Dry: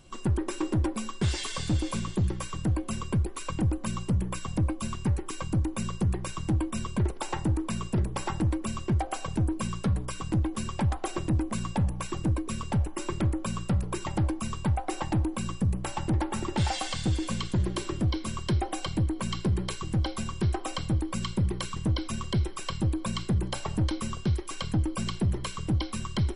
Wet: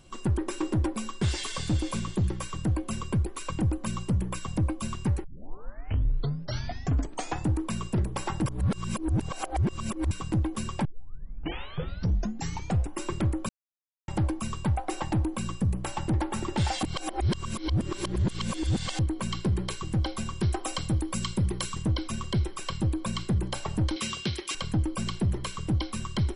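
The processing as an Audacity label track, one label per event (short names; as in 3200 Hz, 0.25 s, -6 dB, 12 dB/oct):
5.240000	5.240000	tape start 2.30 s
8.460000	10.110000	reverse
10.850000	10.850000	tape start 2.14 s
13.490000	14.080000	mute
16.830000	18.990000	reverse
20.410000	21.830000	high shelf 6000 Hz +8 dB
23.960000	24.550000	weighting filter D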